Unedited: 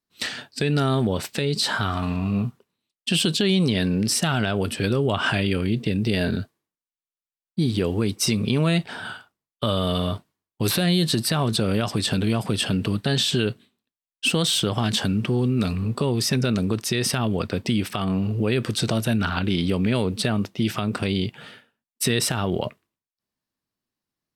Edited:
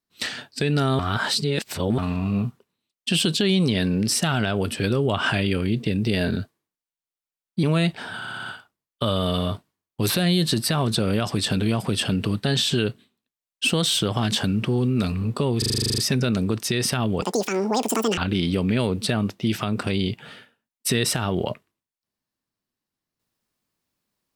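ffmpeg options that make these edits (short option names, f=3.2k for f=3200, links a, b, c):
-filter_complex "[0:a]asplit=21[a][b][c][d][e][f][g][h][i][j][k][l][m][n][o][p][q][r][s][t][u];[a]atrim=end=0.992[v];[b]atrim=start=0.988:end=1.982,asetpts=PTS-STARTPTS,areverse[w];[c]atrim=start=1.978:end=7.632[x];[d]atrim=start=8.538:end=9.132[y];[e]atrim=start=9.068:end=9.132[z];[f]atrim=start=9.068:end=9.132[aa];[g]atrim=start=9.068:end=9.132[ab];[h]atrim=start=9.068:end=9.132[ac];[i]atrim=start=9.068:end=16.232[ad];[j]atrim=start=16.188:end=16.232[ae];[k]atrim=start=16.188:end=16.232[af];[l]atrim=start=16.188:end=16.232[ag];[m]atrim=start=16.188:end=16.232[ah];[n]atrim=start=16.188:end=16.232[ai];[o]atrim=start=16.188:end=16.232[aj];[p]atrim=start=16.188:end=16.232[ak];[q]atrim=start=16.188:end=16.232[al];[r]atrim=start=16.188:end=16.232[am];[s]atrim=start=16.188:end=17.434[an];[t]atrim=start=17.43:end=19.33,asetpts=PTS-STARTPTS,asetrate=87759,aresample=44100[ao];[u]atrim=start=19.326[ap];[v][w]acrossfade=d=0.004:c1=hsin:c2=hsin[aq];[aq][x]acrossfade=d=0.004:c1=hsin:c2=hsin[ar];[ar][y]acrossfade=d=0.004:c1=hsin:c2=hsin[as];[as][z]acrossfade=d=0.004:c1=hsin:c2=hsin[at];[at][aa]acrossfade=d=0.004:c1=hsin:c2=hsin[au];[au][ab]acrossfade=d=0.004:c1=hsin:c2=hsin[av];[av][ac]acrossfade=d=0.004:c1=hsin:c2=hsin[aw];[aw][ad]acrossfade=d=0.004:c1=hsin:c2=hsin[ax];[ax][ae]acrossfade=d=0.004:c1=hsin:c2=hsin[ay];[ay][af]acrossfade=d=0.004:c1=hsin:c2=hsin[az];[az][ag]acrossfade=d=0.004:c1=hsin:c2=hsin[ba];[ba][ah]acrossfade=d=0.004:c1=hsin:c2=hsin[bb];[bb][ai]acrossfade=d=0.004:c1=hsin:c2=hsin[bc];[bc][aj]acrossfade=d=0.004:c1=hsin:c2=hsin[bd];[bd][ak]acrossfade=d=0.004:c1=hsin:c2=hsin[be];[be][al]acrossfade=d=0.004:c1=hsin:c2=hsin[bf];[bf][am]acrossfade=d=0.004:c1=hsin:c2=hsin[bg];[bg][an]acrossfade=d=0.004:c1=hsin:c2=hsin[bh];[bh][ao]acrossfade=d=0.004:c1=hsin:c2=hsin[bi];[bi][ap]acrossfade=d=0.004:c1=hsin:c2=hsin"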